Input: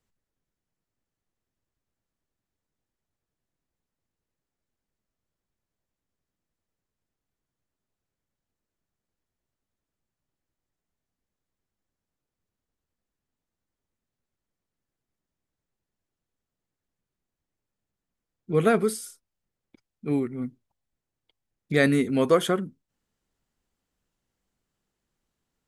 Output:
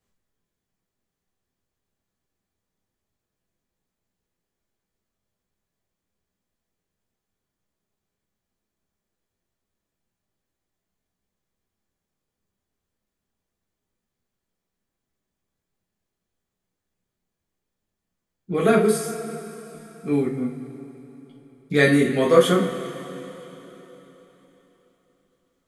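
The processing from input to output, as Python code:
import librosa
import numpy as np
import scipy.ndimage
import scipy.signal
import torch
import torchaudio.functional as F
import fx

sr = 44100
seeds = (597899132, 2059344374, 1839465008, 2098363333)

y = fx.rev_double_slope(x, sr, seeds[0], early_s=0.34, late_s=3.9, knee_db=-18, drr_db=-4.0)
y = F.gain(torch.from_numpy(y), -1.0).numpy()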